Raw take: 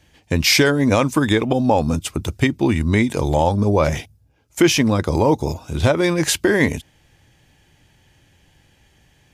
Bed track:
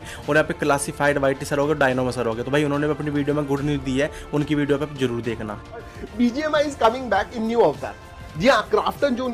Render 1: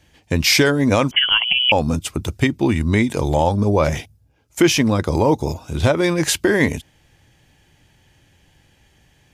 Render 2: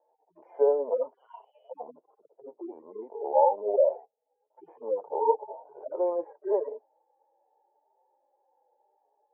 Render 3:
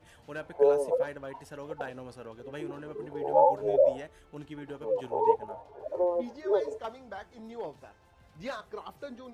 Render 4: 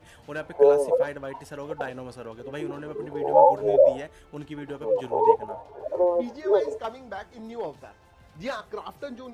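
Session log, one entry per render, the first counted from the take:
0:01.11–0:01.72: voice inversion scrambler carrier 3,200 Hz
harmonic-percussive split with one part muted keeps harmonic; elliptic band-pass filter 440–910 Hz, stop band 70 dB
mix in bed track −21.5 dB
level +5.5 dB

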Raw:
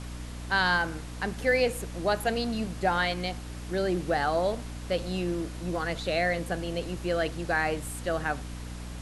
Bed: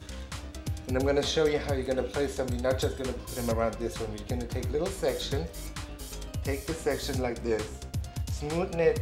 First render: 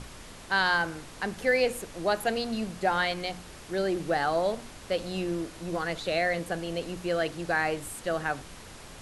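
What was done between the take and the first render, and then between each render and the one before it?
mains-hum notches 60/120/180/240/300 Hz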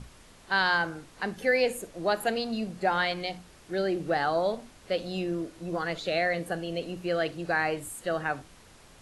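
noise reduction from a noise print 8 dB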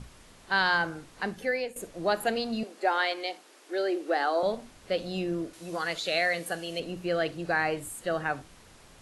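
0:01.27–0:01.76: fade out, to −14.5 dB
0:02.63–0:04.43: Butterworth high-pass 270 Hz 48 dB per octave
0:05.53–0:06.80: spectral tilt +2.5 dB per octave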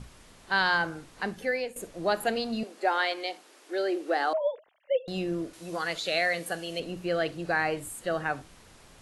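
0:04.33–0:05.08: three sine waves on the formant tracks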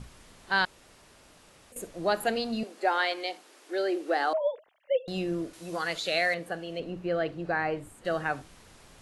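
0:00.65–0:01.72: fill with room tone
0:06.34–0:08.05: low-pass filter 1,600 Hz 6 dB per octave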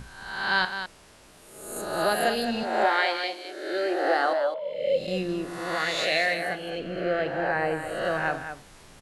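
peak hold with a rise ahead of every peak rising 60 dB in 0.99 s
loudspeakers that aren't time-aligned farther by 13 metres −12 dB, 72 metres −9 dB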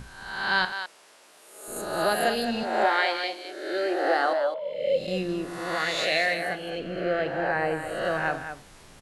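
0:00.72–0:01.68: high-pass filter 450 Hz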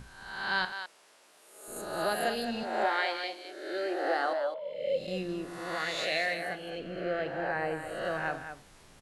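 level −6 dB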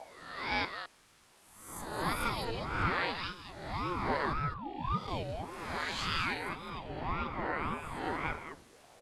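sub-octave generator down 1 octave, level −4 dB
ring modulator whose carrier an LFO sweeps 470 Hz, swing 55%, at 1.8 Hz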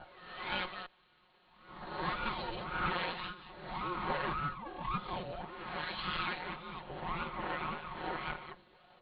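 lower of the sound and its delayed copy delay 5.5 ms
Chebyshev low-pass with heavy ripple 4,300 Hz, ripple 3 dB

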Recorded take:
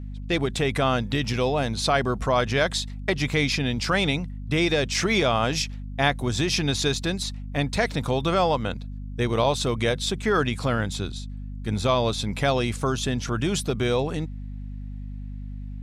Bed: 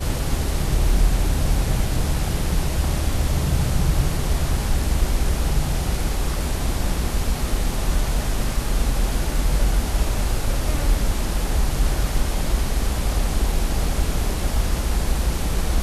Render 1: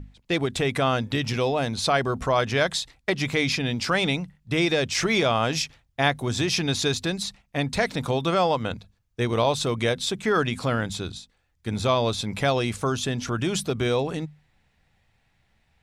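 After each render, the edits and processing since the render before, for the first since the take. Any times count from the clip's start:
mains-hum notches 50/100/150/200/250 Hz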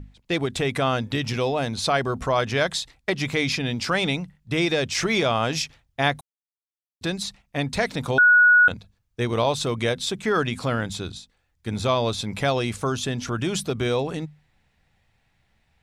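0:06.21–0:07.01: silence
0:08.18–0:08.68: beep over 1,460 Hz −11 dBFS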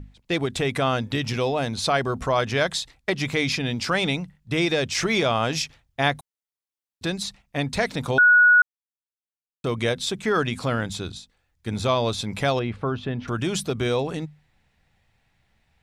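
0:08.62–0:09.64: silence
0:12.59–0:13.28: high-frequency loss of the air 400 metres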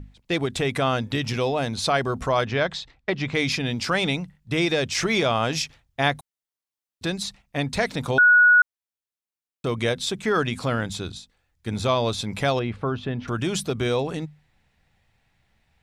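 0:02.44–0:03.35: high-frequency loss of the air 150 metres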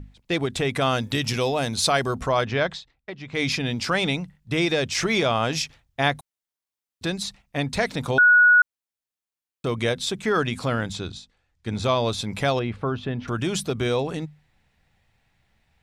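0:00.81–0:02.15: high-shelf EQ 5,400 Hz +11 dB
0:02.70–0:03.43: duck −11 dB, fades 0.14 s
0:10.92–0:11.84: low-pass filter 7,400 Hz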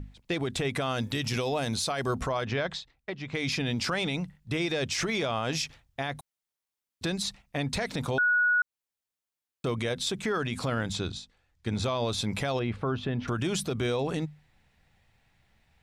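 downward compressor 2 to 1, threshold −24 dBFS, peak gain reduction 6 dB
brickwall limiter −20.5 dBFS, peak gain reduction 9.5 dB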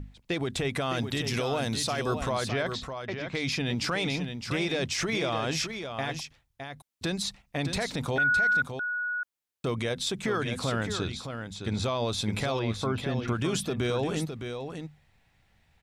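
single-tap delay 612 ms −7.5 dB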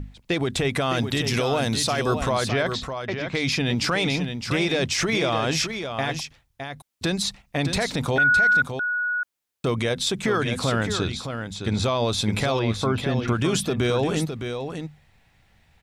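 level +6 dB

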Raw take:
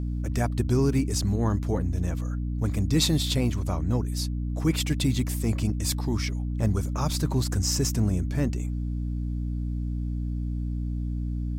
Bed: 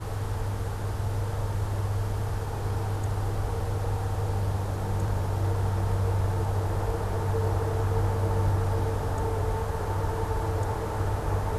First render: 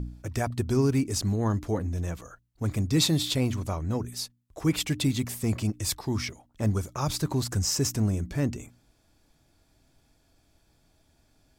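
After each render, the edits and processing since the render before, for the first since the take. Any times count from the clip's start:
hum removal 60 Hz, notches 5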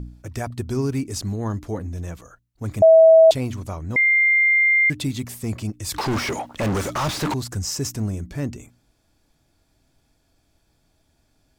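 0:02.82–0:03.31: beep over 648 Hz −7 dBFS
0:03.96–0:04.90: beep over 2,100 Hz −13.5 dBFS
0:05.94–0:07.34: mid-hump overdrive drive 40 dB, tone 2,200 Hz, clips at −15.5 dBFS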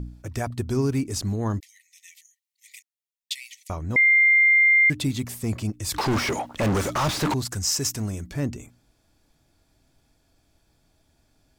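0:01.60–0:03.70: linear-phase brick-wall high-pass 1,800 Hz
0:07.45–0:08.34: tilt shelving filter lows −4 dB, about 880 Hz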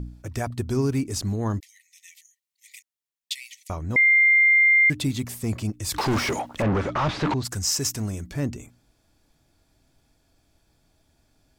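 0:06.61–0:07.43: low-pass filter 2,100 Hz → 4,300 Hz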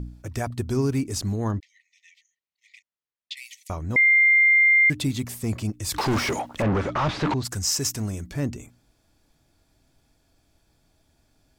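0:01.51–0:03.37: high-frequency loss of the air 190 metres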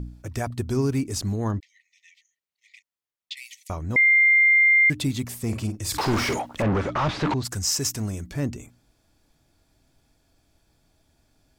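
0:05.42–0:06.38: double-tracking delay 50 ms −9 dB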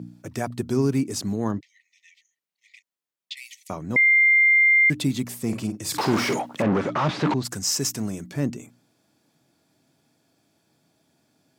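high-pass filter 140 Hz 24 dB per octave
low-shelf EQ 420 Hz +4 dB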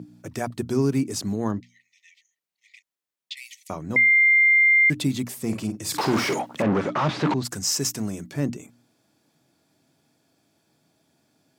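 mains-hum notches 60/120/180/240 Hz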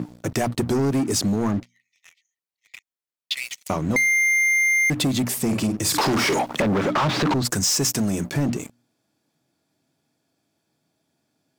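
leveller curve on the samples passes 3
downward compressor, threshold −19 dBFS, peak gain reduction 6 dB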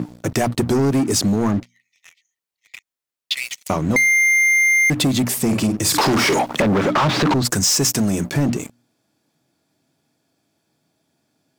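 level +4 dB

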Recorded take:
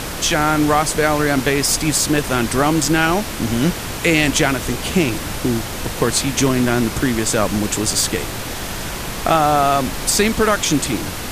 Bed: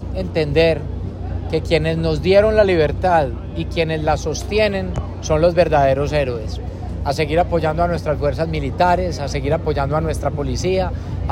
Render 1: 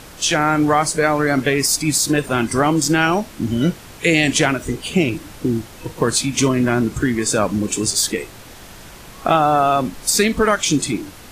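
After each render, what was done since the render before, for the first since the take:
noise reduction from a noise print 13 dB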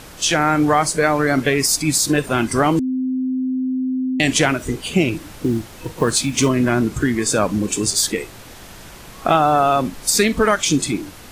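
0:02.79–0:04.20: beep over 258 Hz −18 dBFS
0:05.21–0:06.52: one scale factor per block 7 bits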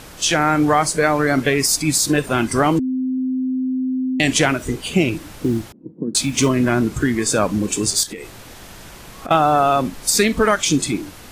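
0:02.78–0:03.18: low-pass filter 1,400 Hz 6 dB per octave
0:05.72–0:06.15: flat-topped band-pass 240 Hz, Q 1.6
0:08.03–0:09.31: downward compressor, threshold −27 dBFS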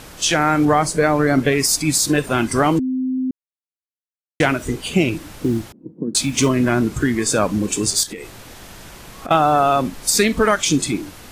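0:00.65–0:01.52: tilt shelving filter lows +3 dB, about 730 Hz
0:03.31–0:04.40: silence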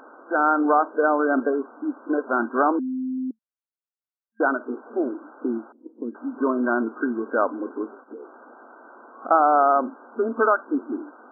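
brick-wall band-pass 220–1,600 Hz
low-shelf EQ 420 Hz −8.5 dB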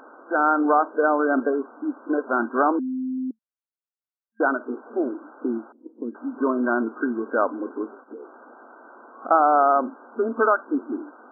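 no processing that can be heard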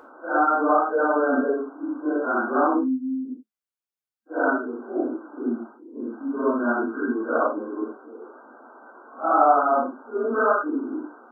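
random phases in long frames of 200 ms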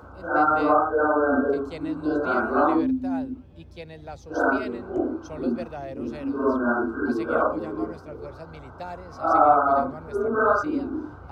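mix in bed −21.5 dB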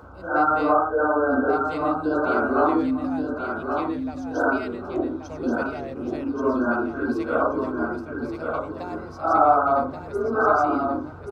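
repeating echo 1,130 ms, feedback 23%, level −5.5 dB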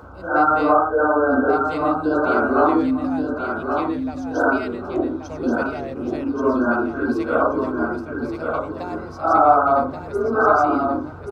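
level +3.5 dB
brickwall limiter −2 dBFS, peak gain reduction 2.5 dB

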